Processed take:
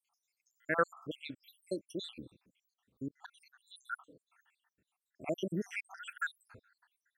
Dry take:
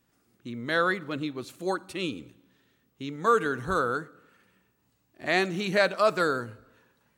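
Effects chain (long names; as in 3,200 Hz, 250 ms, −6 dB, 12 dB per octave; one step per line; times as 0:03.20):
time-frequency cells dropped at random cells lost 83%
0:03.07–0:03.74: volume swells 294 ms
level −2.5 dB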